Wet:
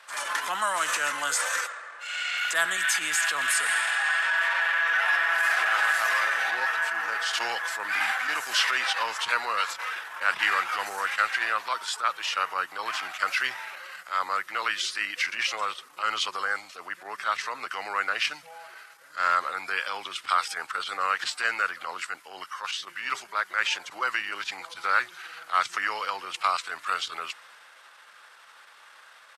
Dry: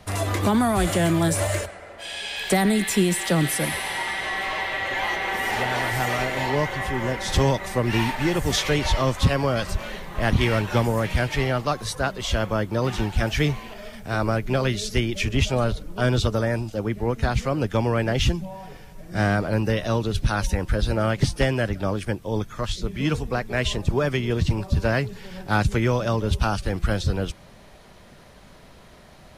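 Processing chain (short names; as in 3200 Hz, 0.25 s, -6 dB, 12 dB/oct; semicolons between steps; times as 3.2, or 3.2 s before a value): transient shaper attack -8 dB, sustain +2 dB; resonant high-pass 1500 Hz, resonance Q 2.1; pitch shift -2.5 st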